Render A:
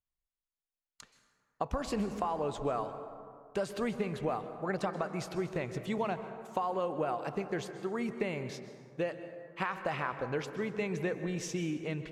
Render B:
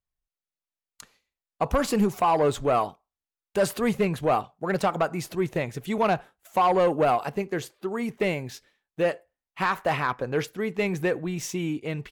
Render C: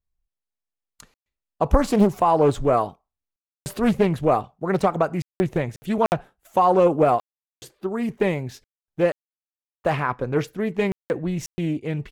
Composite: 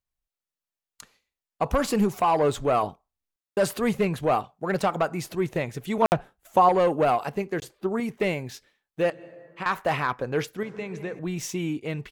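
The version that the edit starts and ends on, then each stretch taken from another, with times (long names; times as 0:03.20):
B
0:02.83–0:03.57: punch in from C
0:06.02–0:06.69: punch in from C
0:07.60–0:08.00: punch in from C
0:09.10–0:09.66: punch in from A
0:10.63–0:11.19: punch in from A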